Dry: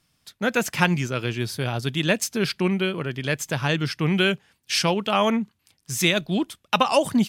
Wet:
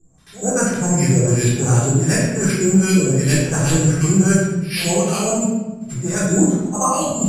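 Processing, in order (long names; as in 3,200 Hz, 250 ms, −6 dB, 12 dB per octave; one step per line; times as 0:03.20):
reversed playback
downward compressor 6 to 1, threshold −28 dBFS, peak gain reduction 14 dB
reversed playback
auto-filter low-pass saw up 2.7 Hz 350–3,700 Hz
bad sample-rate conversion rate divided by 6×, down none, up zero stuff
on a send: backwards echo 87 ms −17.5 dB
on the sum: speech leveller 0.5 s
Butterworth low-pass 11,000 Hz 36 dB per octave
spectral tilt −2 dB per octave
rectangular room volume 600 cubic metres, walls mixed, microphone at 3.7 metres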